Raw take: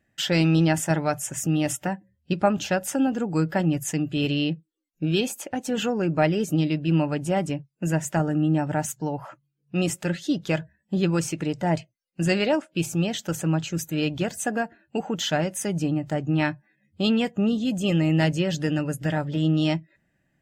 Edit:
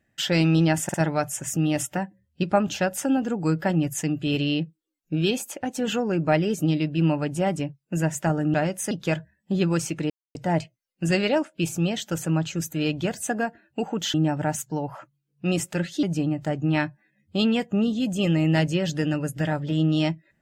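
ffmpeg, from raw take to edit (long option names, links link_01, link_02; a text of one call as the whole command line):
ffmpeg -i in.wav -filter_complex "[0:a]asplit=8[link_01][link_02][link_03][link_04][link_05][link_06][link_07][link_08];[link_01]atrim=end=0.892[link_09];[link_02]atrim=start=0.838:end=0.892[link_10];[link_03]atrim=start=0.838:end=8.442[link_11];[link_04]atrim=start=15.308:end=15.682[link_12];[link_05]atrim=start=10.328:end=11.52,asetpts=PTS-STARTPTS,afade=type=out:start_time=1.188:duration=0.004:curve=hsin,apad=pad_dur=0.25[link_13];[link_06]atrim=start=11.52:end=15.312,asetpts=PTS-STARTPTS,afade=type=in:duration=0.004:curve=hsin[link_14];[link_07]atrim=start=8.438:end=10.332[link_15];[link_08]atrim=start=15.678[link_16];[link_09][link_10]acrossfade=duration=0.004:curve1=hsin:curve2=hsin[link_17];[link_17][link_11]acrossfade=duration=0.004:curve1=hsin:curve2=hsin[link_18];[link_18][link_12]acrossfade=duration=0.004:curve1=hsin:curve2=hsin[link_19];[link_13][link_14]concat=n=2:v=0:a=1[link_20];[link_19][link_20]acrossfade=duration=0.004:curve1=hsin:curve2=hsin[link_21];[link_21][link_15]acrossfade=duration=0.004:curve1=hsin:curve2=hsin[link_22];[link_22][link_16]acrossfade=duration=0.004:curve1=hsin:curve2=hsin" out.wav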